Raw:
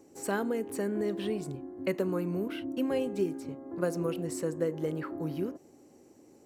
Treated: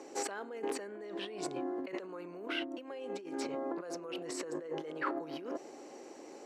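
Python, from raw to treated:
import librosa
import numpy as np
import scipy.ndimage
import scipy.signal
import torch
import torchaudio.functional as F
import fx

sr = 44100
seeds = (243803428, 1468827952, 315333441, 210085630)

y = fx.over_compress(x, sr, threshold_db=-41.0, ratio=-1.0)
y = fx.bandpass_edges(y, sr, low_hz=520.0, high_hz=5100.0)
y = y * 10.0 ** (7.5 / 20.0)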